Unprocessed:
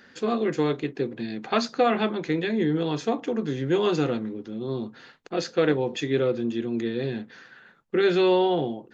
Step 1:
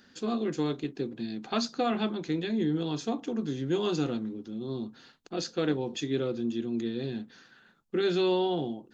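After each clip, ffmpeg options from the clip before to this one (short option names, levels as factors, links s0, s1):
-af "equalizer=f=125:t=o:w=1:g=-5,equalizer=f=500:t=o:w=1:g=-8,equalizer=f=1000:t=o:w=1:g=-4,equalizer=f=2000:t=o:w=1:g=-10"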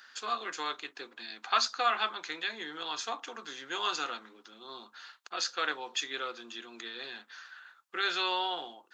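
-af "highpass=f=1200:t=q:w=1.8,volume=1.58"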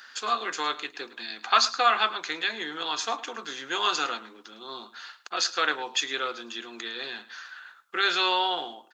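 -af "aecho=1:1:107:0.133,volume=2.11"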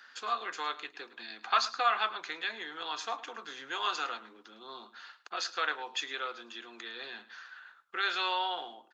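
-filter_complex "[0:a]highshelf=f=5100:g=-10.5,acrossover=split=470|1200[s0][s1][s2];[s0]acompressor=threshold=0.00355:ratio=6[s3];[s3][s1][s2]amix=inputs=3:normalize=0,volume=0.562"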